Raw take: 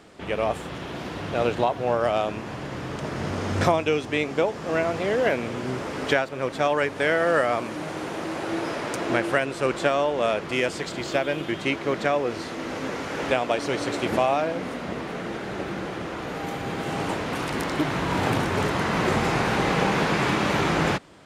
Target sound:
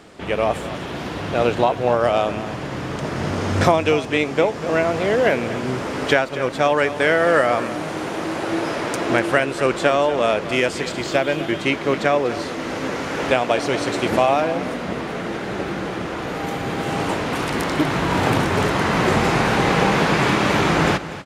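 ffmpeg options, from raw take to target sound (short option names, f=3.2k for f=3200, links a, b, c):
-af "aecho=1:1:243:0.211,volume=5dB"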